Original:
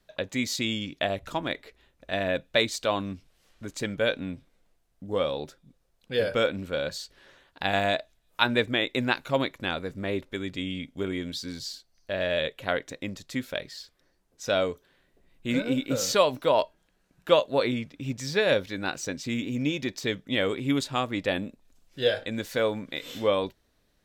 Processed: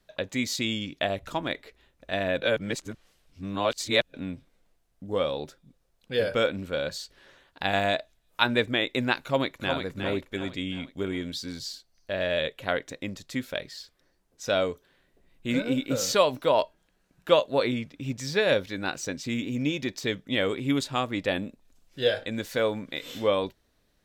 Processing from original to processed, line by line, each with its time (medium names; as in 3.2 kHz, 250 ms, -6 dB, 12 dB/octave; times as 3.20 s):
2.42–4.14 s: reverse
9.22–9.77 s: echo throw 360 ms, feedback 45%, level -6 dB